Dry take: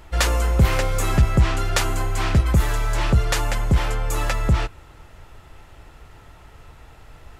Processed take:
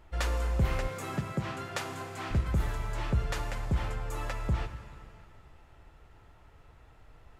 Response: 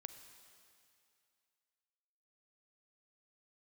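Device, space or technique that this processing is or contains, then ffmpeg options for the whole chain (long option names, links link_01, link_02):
swimming-pool hall: -filter_complex "[1:a]atrim=start_sample=2205[link_01];[0:a][link_01]afir=irnorm=-1:irlink=0,highshelf=frequency=3500:gain=-7,asettb=1/sr,asplit=3[link_02][link_03][link_04];[link_02]atrim=end=0.884[link_05];[link_03]atrim=start=0.88:end=2.31,asetpts=PTS-STARTPTS,afade=type=in:duration=0.004:curve=qsin,afade=type=out:start_time=1.426:duration=0.004:curve=qsin,highpass=frequency=120:width=0.5412,highpass=frequency=120:width=1.3066[link_06];[link_04]atrim=start=2.306[link_07];[link_05][link_06]acrossfade=duration=0.004:curve1=hsin:curve2=qsin[link_08];[link_08][link_07]acrossfade=duration=0.004:curve1=qsin:curve2=hsin,volume=-5.5dB"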